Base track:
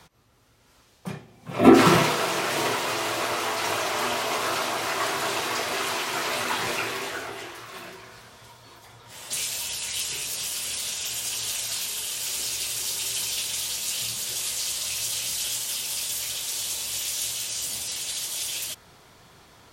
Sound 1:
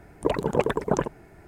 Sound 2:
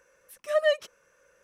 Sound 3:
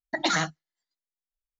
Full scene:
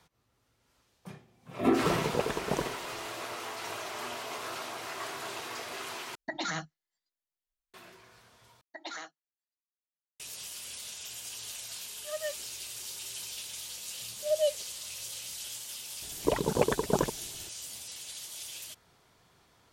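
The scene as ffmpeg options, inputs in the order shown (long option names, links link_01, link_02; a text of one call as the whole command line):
ffmpeg -i bed.wav -i cue0.wav -i cue1.wav -i cue2.wav -filter_complex "[1:a]asplit=2[link_01][link_02];[3:a]asplit=2[link_03][link_04];[2:a]asplit=2[link_05][link_06];[0:a]volume=-12dB[link_07];[link_03]alimiter=limit=-21.5dB:level=0:latency=1:release=244[link_08];[link_04]highpass=frequency=320:width=0.5412,highpass=frequency=320:width=1.3066[link_09];[link_06]asuperstop=centerf=1500:order=4:qfactor=0.59[link_10];[link_07]asplit=3[link_11][link_12][link_13];[link_11]atrim=end=6.154[link_14];[link_08]atrim=end=1.59,asetpts=PTS-STARTPTS,volume=-2dB[link_15];[link_12]atrim=start=7.736:end=8.614[link_16];[link_09]atrim=end=1.59,asetpts=PTS-STARTPTS,volume=-16dB[link_17];[link_13]atrim=start=10.196[link_18];[link_01]atrim=end=1.47,asetpts=PTS-STARTPTS,volume=-8dB,afade=type=in:duration=0.004:curve=hsin,afade=type=out:start_time=1.466:duration=0.004:curve=hsin,adelay=1600[link_19];[link_05]atrim=end=1.43,asetpts=PTS-STARTPTS,volume=-13.5dB,afade=type=in:duration=0.004:curve=hsin,afade=type=out:start_time=1.426:duration=0.004:curve=hsin,adelay=11580[link_20];[link_10]atrim=end=1.43,asetpts=PTS-STARTPTS,volume=-2dB,afade=type=in:duration=0.004:curve=hsin,afade=type=out:start_time=1.426:duration=0.004:curve=hsin,adelay=13760[link_21];[link_02]atrim=end=1.47,asetpts=PTS-STARTPTS,volume=-3.5dB,afade=type=in:duration=0.004:curve=hsin,afade=type=out:start_time=1.466:duration=0.004:curve=hsin,adelay=16020[link_22];[link_14][link_15]acrossfade=duration=0.004:curve1=hsin:curve2=hsin[link_23];[link_23][link_16]acrossfade=duration=0.004:curve1=hsin:curve2=hsin[link_24];[link_24][link_17]acrossfade=duration=0.004:curve1=hsin:curve2=hsin[link_25];[link_25][link_18]acrossfade=duration=0.004:curve1=hsin:curve2=hsin[link_26];[link_26][link_19][link_20][link_21][link_22]amix=inputs=5:normalize=0" out.wav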